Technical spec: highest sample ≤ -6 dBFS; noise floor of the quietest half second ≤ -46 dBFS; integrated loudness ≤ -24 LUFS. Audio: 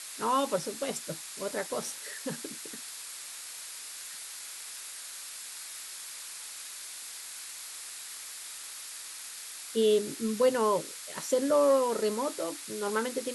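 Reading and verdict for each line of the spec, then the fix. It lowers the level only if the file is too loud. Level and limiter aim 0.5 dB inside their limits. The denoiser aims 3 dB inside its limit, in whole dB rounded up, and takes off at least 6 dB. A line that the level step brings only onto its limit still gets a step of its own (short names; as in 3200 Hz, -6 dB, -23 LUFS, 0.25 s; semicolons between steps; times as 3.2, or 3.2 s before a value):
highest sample -15.0 dBFS: OK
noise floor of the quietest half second -43 dBFS: fail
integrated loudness -32.5 LUFS: OK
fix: denoiser 6 dB, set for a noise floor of -43 dBFS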